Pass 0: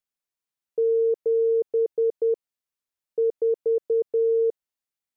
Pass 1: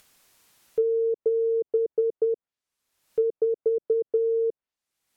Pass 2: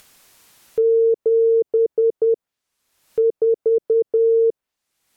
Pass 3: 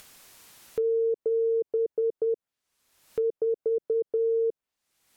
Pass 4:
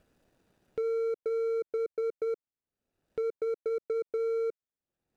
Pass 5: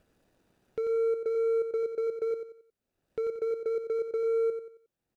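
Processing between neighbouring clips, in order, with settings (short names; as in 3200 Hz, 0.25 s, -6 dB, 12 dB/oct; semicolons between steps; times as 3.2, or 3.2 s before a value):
treble ducked by the level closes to 380 Hz, closed at -19.5 dBFS; upward compressor, threshold -41 dBFS; gain +2 dB
limiter -20 dBFS, peak gain reduction 4.5 dB; gain +8.5 dB
compressor 1.5:1, threshold -41 dBFS, peak gain reduction 9.5 dB
median filter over 41 samples; gain -4 dB
feedback echo 90 ms, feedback 35%, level -8 dB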